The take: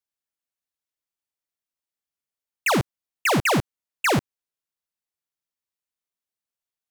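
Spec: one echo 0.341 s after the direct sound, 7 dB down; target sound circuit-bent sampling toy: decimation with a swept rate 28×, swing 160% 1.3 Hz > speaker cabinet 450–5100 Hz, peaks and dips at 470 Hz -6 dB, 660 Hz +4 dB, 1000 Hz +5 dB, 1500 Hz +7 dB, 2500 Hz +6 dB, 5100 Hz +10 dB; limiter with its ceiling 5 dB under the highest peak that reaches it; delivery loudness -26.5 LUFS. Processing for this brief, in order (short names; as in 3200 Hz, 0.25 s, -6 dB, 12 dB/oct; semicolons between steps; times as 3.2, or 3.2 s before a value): limiter -24 dBFS; echo 0.341 s -7 dB; decimation with a swept rate 28×, swing 160% 1.3 Hz; speaker cabinet 450–5100 Hz, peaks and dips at 470 Hz -6 dB, 660 Hz +4 dB, 1000 Hz +5 dB, 1500 Hz +7 dB, 2500 Hz +6 dB, 5100 Hz +10 dB; gain +3 dB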